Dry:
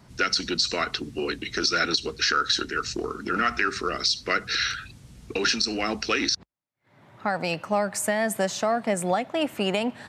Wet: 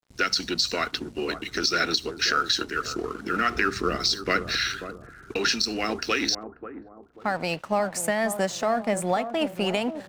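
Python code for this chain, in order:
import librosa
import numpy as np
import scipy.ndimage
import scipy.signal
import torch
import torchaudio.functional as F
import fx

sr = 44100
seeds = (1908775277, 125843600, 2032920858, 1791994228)

p1 = fx.low_shelf(x, sr, hz=340.0, db=8.0, at=(3.55, 4.57))
p2 = np.sign(p1) * np.maximum(np.abs(p1) - 10.0 ** (-46.5 / 20.0), 0.0)
y = p2 + fx.echo_bbd(p2, sr, ms=538, stages=4096, feedback_pct=36, wet_db=-10, dry=0)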